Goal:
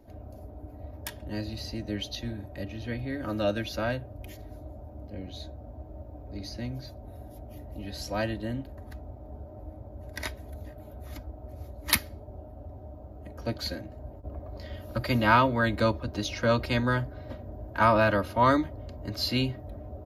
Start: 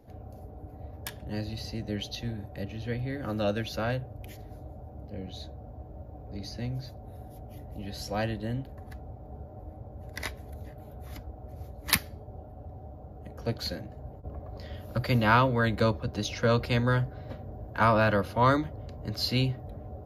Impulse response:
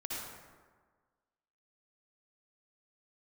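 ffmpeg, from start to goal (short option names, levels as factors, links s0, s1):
-af "aecho=1:1:3.2:0.48"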